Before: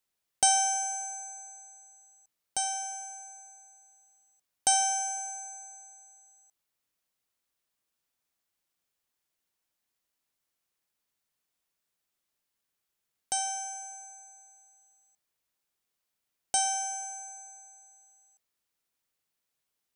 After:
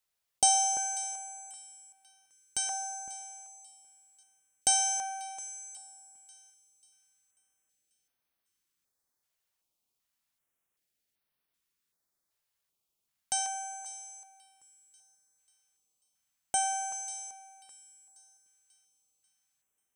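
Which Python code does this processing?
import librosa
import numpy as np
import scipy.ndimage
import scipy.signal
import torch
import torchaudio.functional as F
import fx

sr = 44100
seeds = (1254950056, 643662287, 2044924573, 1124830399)

y = fx.echo_wet_highpass(x, sr, ms=540, feedback_pct=44, hz=2400.0, wet_db=-17.0)
y = fx.filter_held_notch(y, sr, hz=2.6, low_hz=260.0, high_hz=7200.0)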